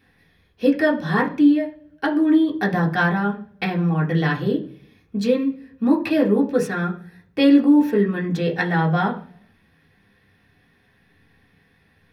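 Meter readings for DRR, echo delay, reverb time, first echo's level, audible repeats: −2.0 dB, no echo audible, 0.50 s, no echo audible, no echo audible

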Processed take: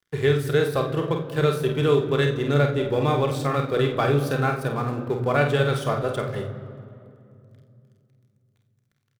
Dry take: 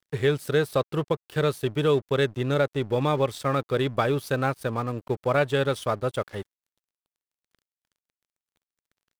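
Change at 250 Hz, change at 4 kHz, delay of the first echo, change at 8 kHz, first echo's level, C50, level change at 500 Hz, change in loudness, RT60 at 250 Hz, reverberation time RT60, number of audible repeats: +3.0 dB, +1.5 dB, 49 ms, +1.0 dB, −6.0 dB, 9.0 dB, +2.0 dB, +2.5 dB, 3.8 s, 2.6 s, 2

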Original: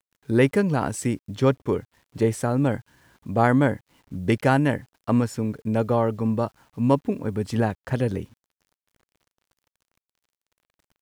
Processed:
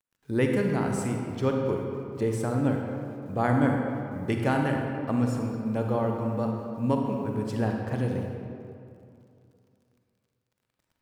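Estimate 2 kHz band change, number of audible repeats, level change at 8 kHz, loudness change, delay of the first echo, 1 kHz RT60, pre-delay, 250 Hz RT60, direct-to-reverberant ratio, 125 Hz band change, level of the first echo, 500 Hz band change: −5.0 dB, no echo audible, −6.0 dB, −4.0 dB, no echo audible, 2.5 s, 36 ms, 2.6 s, 1.5 dB, −3.5 dB, no echo audible, −4.5 dB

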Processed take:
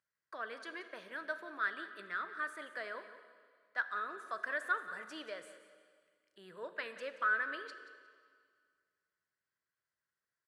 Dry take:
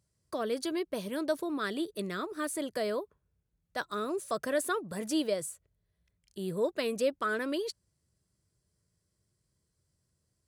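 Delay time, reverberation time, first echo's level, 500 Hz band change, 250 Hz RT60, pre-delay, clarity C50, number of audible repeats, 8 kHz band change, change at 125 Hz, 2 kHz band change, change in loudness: 179 ms, 2.0 s, −15.5 dB, −14.5 dB, 2.0 s, 6 ms, 10.0 dB, 2, −21.0 dB, below −20 dB, +3.5 dB, −6.0 dB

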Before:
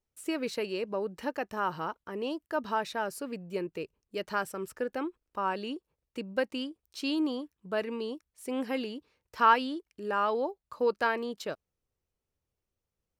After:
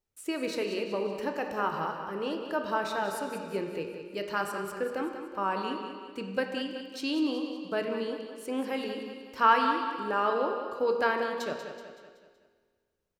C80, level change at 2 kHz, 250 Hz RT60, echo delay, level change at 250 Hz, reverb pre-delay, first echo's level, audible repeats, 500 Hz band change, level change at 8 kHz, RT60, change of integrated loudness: 4.5 dB, +1.5 dB, 2.0 s, 188 ms, +1.0 dB, 17 ms, −9.5 dB, 5, +2.0 dB, +1.0 dB, 1.9 s, +1.5 dB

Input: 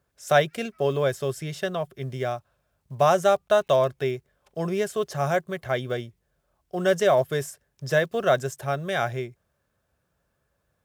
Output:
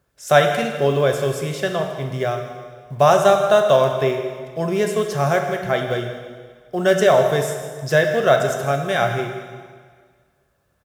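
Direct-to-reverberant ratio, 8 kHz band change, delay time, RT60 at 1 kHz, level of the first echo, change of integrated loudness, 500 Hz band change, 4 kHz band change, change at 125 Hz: 3.5 dB, +6.5 dB, 159 ms, 1.7 s, −15.0 dB, +6.0 dB, +6.5 dB, +6.5 dB, +6.5 dB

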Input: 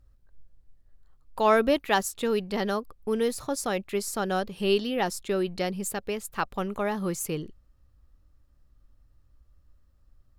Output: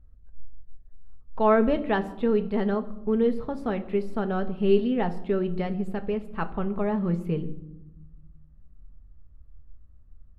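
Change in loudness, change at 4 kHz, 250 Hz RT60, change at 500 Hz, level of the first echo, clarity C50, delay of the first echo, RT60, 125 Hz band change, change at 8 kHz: +1.5 dB, −10.0 dB, 1.7 s, +1.5 dB, no echo audible, 15.0 dB, no echo audible, 0.95 s, +6.0 dB, below −30 dB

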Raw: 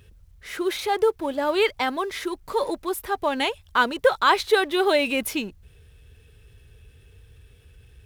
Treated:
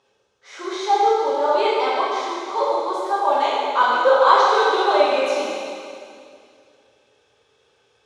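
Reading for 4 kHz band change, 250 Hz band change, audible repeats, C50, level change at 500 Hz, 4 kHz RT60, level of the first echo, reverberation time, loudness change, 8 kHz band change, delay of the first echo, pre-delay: +0.5 dB, −3.5 dB, no echo audible, −2.5 dB, +4.0 dB, 2.3 s, no echo audible, 2.4 s, +4.5 dB, −1.5 dB, no echo audible, 5 ms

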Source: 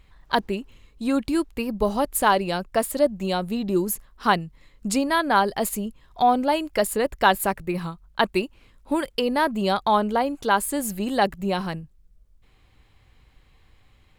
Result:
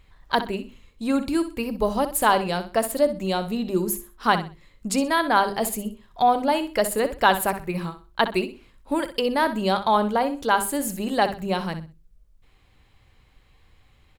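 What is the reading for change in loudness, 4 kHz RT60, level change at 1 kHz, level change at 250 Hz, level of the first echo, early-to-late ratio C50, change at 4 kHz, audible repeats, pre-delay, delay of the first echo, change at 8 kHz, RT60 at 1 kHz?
0.0 dB, no reverb audible, +0.5 dB, −0.5 dB, −11.5 dB, no reverb audible, +0.5 dB, 3, no reverb audible, 63 ms, +0.5 dB, no reverb audible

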